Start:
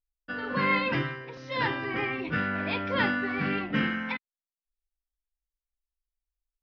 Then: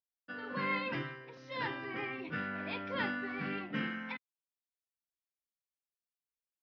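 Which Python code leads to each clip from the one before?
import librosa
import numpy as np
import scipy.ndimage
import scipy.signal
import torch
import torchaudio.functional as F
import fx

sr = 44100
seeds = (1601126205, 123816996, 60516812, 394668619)

y = scipy.signal.sosfilt(scipy.signal.butter(2, 120.0, 'highpass', fs=sr, output='sos'), x)
y = y * 10.0 ** (-9.0 / 20.0)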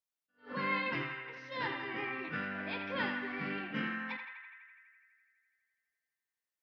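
y = fx.low_shelf(x, sr, hz=84.0, db=-7.0)
y = fx.echo_banded(y, sr, ms=83, feedback_pct=80, hz=1800.0, wet_db=-5.5)
y = fx.attack_slew(y, sr, db_per_s=210.0)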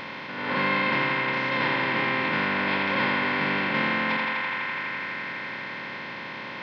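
y = fx.bin_compress(x, sr, power=0.2)
y = y * 10.0 ** (4.0 / 20.0)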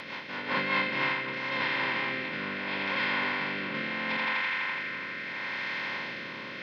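y = fx.tilt_eq(x, sr, slope=1.5)
y = fx.rider(y, sr, range_db=4, speed_s=2.0)
y = fx.rotary_switch(y, sr, hz=5.0, then_hz=0.75, switch_at_s=0.54)
y = y * 10.0 ** (-2.5 / 20.0)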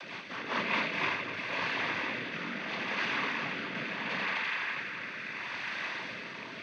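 y = fx.noise_vocoder(x, sr, seeds[0], bands=16)
y = y * 10.0 ** (-2.5 / 20.0)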